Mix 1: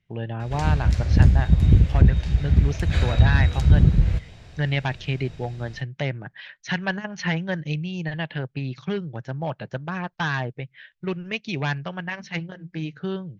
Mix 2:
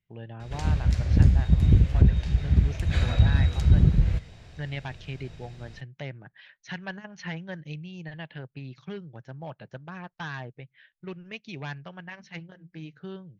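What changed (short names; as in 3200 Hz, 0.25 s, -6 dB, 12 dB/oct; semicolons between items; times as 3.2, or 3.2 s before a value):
speech -10.5 dB; background -3.0 dB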